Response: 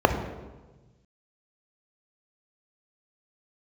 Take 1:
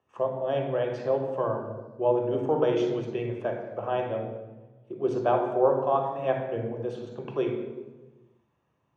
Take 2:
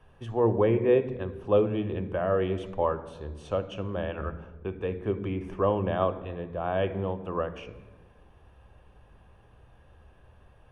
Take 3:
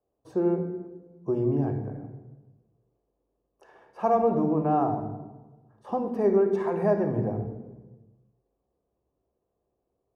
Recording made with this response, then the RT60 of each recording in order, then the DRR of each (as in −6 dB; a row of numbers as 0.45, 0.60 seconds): 3; 1.2, 1.2, 1.2 seconds; 1.0, 10.5, 5.5 decibels